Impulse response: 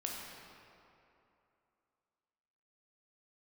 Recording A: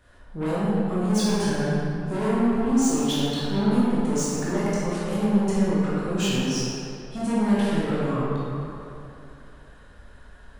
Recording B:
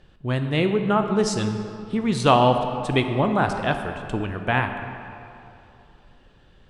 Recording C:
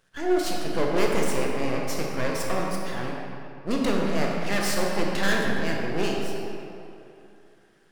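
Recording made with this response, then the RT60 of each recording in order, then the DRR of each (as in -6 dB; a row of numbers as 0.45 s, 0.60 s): C; 2.8 s, 2.8 s, 2.8 s; -9.5 dB, 6.0 dB, -2.0 dB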